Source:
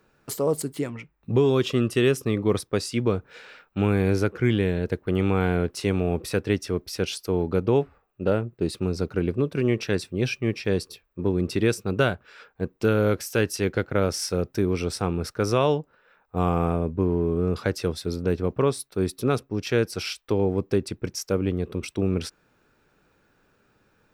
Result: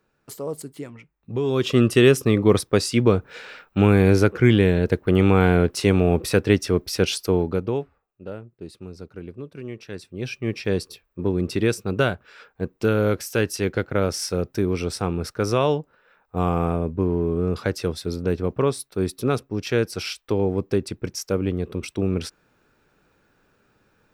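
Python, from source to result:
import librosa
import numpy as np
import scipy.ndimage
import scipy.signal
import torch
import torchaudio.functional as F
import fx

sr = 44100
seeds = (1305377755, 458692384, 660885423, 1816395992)

y = fx.gain(x, sr, db=fx.line((1.34, -6.5), (1.79, 6.0), (7.26, 6.0), (7.78, -5.0), (8.23, -12.0), (9.84, -12.0), (10.58, 1.0)))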